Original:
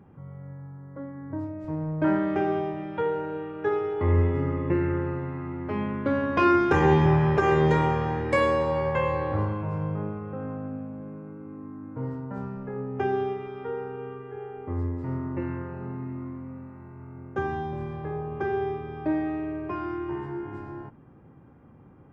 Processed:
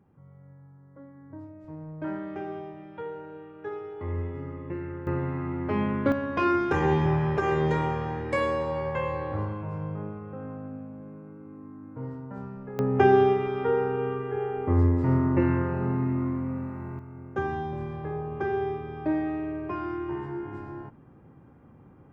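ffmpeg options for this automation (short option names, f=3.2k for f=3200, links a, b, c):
-af "asetnsamples=n=441:p=0,asendcmd='5.07 volume volume 2.5dB;6.12 volume volume -4dB;12.79 volume volume 8dB;16.99 volume volume -0.5dB',volume=-10dB"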